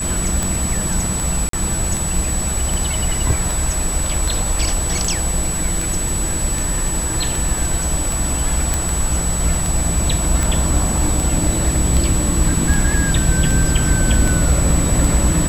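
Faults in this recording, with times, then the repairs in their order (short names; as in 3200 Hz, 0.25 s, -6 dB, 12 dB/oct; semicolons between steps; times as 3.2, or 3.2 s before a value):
tick 78 rpm
tone 7900 Hz -22 dBFS
1.49–1.53 gap 43 ms
8.74 pop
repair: de-click; notch 7900 Hz, Q 30; interpolate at 1.49, 43 ms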